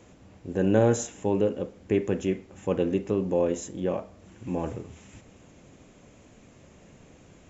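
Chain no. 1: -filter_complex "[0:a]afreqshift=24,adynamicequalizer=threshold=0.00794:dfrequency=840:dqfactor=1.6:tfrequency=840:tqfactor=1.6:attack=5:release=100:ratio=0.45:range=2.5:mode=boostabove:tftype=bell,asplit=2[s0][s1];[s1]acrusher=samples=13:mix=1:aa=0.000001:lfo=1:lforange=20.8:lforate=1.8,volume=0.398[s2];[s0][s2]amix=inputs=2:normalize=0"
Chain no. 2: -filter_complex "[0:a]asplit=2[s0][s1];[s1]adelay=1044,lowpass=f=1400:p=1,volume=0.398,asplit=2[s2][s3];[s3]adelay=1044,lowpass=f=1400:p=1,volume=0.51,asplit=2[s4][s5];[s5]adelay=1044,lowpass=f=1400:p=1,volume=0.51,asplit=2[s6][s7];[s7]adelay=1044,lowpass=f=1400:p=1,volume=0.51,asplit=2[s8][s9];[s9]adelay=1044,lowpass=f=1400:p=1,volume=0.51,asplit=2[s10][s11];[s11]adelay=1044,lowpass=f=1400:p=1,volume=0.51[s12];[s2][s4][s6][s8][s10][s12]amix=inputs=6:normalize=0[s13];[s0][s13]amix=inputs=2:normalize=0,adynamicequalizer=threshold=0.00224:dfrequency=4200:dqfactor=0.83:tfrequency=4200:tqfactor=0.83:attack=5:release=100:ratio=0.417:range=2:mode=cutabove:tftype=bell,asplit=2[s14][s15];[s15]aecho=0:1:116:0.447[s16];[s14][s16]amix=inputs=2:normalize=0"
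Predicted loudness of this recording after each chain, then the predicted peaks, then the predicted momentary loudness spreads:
-24.0 LUFS, -26.5 LUFS; -4.5 dBFS, -7.5 dBFS; 13 LU, 20 LU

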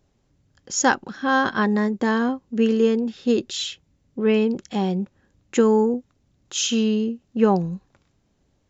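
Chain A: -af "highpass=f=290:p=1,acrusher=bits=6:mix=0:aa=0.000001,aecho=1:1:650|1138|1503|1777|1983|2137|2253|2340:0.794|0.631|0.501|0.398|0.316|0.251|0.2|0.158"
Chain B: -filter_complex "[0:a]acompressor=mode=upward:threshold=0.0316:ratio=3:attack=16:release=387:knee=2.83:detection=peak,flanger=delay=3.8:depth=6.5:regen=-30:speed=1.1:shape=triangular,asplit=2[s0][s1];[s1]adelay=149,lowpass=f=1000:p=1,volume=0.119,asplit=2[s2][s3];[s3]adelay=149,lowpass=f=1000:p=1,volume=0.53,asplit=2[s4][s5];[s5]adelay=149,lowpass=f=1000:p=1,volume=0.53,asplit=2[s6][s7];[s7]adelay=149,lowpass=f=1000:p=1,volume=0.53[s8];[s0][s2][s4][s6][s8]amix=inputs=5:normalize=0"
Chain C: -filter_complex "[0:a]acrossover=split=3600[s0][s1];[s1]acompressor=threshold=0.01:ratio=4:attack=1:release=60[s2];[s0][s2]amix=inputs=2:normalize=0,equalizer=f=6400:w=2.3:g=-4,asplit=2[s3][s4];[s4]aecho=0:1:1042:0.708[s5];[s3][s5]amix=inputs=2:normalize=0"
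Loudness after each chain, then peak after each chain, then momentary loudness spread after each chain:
-21.0 LUFS, -25.5 LUFS, -21.0 LUFS; -3.5 dBFS, -7.5 dBFS, -5.0 dBFS; 4 LU, 11 LU, 8 LU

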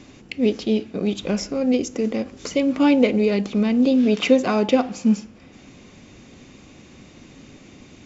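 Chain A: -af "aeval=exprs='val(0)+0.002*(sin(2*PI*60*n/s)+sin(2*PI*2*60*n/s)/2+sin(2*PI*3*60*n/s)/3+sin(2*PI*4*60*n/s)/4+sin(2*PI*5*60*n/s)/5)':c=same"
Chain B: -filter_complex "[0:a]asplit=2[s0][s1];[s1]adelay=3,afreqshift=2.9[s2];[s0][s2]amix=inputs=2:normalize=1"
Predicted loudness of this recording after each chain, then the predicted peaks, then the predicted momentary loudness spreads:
-20.5 LUFS, -23.5 LUFS; -3.5 dBFS, -4.5 dBFS; 8 LU, 11 LU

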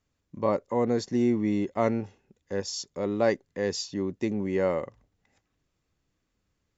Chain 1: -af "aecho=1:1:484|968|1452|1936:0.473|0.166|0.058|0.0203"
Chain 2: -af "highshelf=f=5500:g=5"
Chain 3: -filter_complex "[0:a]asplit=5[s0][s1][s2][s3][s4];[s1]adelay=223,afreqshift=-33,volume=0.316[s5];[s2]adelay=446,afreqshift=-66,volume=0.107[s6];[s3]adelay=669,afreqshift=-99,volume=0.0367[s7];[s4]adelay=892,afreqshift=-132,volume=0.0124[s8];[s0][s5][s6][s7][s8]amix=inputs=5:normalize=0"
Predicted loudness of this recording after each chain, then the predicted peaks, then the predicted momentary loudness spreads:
-28.0 LUFS, -28.0 LUFS, -28.0 LUFS; -9.0 dBFS, -10.5 dBFS, -10.0 dBFS; 9 LU, 8 LU, 10 LU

